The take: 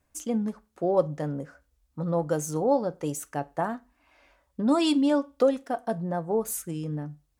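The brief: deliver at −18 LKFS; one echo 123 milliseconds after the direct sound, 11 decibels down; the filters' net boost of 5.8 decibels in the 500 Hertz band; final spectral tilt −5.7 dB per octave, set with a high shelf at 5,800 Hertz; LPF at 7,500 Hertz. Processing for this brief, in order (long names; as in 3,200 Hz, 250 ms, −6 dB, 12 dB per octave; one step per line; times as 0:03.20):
low-pass filter 7,500 Hz
parametric band 500 Hz +6.5 dB
high-shelf EQ 5,800 Hz +3 dB
single-tap delay 123 ms −11 dB
level +5.5 dB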